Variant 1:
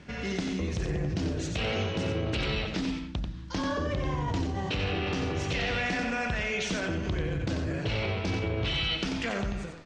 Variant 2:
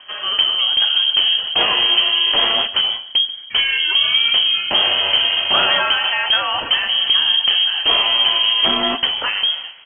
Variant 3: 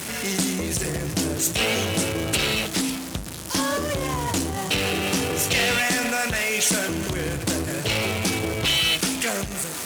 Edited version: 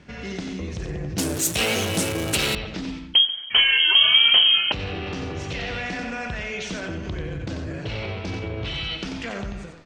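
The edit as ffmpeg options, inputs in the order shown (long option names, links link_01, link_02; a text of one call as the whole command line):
ffmpeg -i take0.wav -i take1.wav -i take2.wav -filter_complex "[0:a]asplit=3[link_01][link_02][link_03];[link_01]atrim=end=1.182[link_04];[2:a]atrim=start=1.178:end=2.552[link_05];[link_02]atrim=start=2.548:end=3.142[link_06];[1:a]atrim=start=3.138:end=4.722[link_07];[link_03]atrim=start=4.718[link_08];[link_04][link_05]acrossfade=duration=0.004:curve1=hsin:curve2=hsin[link_09];[link_09][link_06]acrossfade=duration=0.004:curve1=hsin:curve2=hsin[link_10];[link_10][link_07]acrossfade=duration=0.004:curve1=hsin:curve2=hsin[link_11];[link_11][link_08]acrossfade=duration=0.004:curve1=hsin:curve2=hsin" out.wav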